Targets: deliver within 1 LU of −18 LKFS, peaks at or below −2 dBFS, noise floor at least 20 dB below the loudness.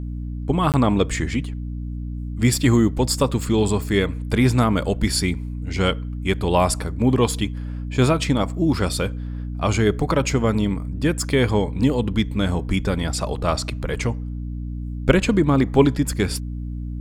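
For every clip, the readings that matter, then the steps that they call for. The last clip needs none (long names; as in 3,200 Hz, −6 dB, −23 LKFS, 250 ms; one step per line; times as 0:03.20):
number of dropouts 1; longest dropout 18 ms; mains hum 60 Hz; hum harmonics up to 300 Hz; level of the hum −26 dBFS; integrated loudness −21.5 LKFS; sample peak −2.5 dBFS; target loudness −18.0 LKFS
→ repair the gap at 0:00.72, 18 ms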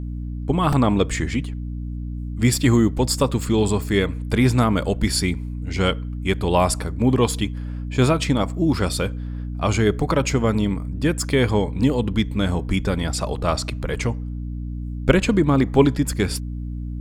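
number of dropouts 0; mains hum 60 Hz; hum harmonics up to 300 Hz; level of the hum −26 dBFS
→ hum removal 60 Hz, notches 5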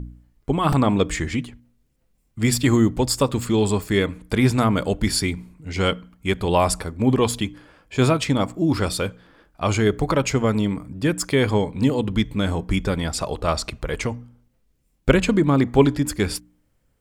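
mains hum none found; integrated loudness −21.5 LKFS; sample peak −3.5 dBFS; target loudness −18.0 LKFS
→ level +3.5 dB
brickwall limiter −2 dBFS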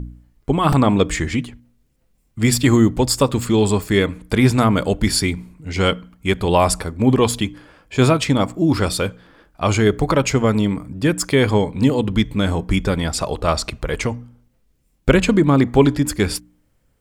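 integrated loudness −18.5 LKFS; sample peak −2.0 dBFS; background noise floor −63 dBFS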